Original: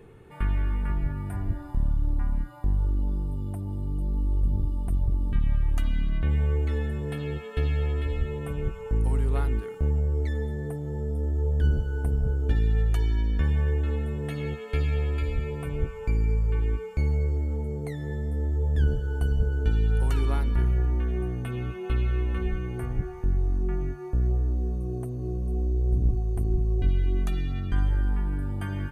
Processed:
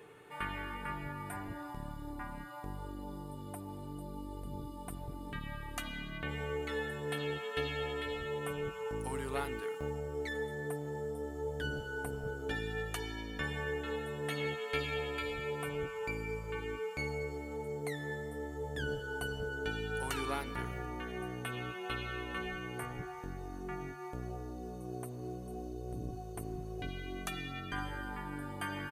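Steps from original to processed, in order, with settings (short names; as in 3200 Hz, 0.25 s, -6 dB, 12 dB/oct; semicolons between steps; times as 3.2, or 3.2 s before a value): HPF 900 Hz 6 dB/oct; comb 6.8 ms, depth 34%; gain +3 dB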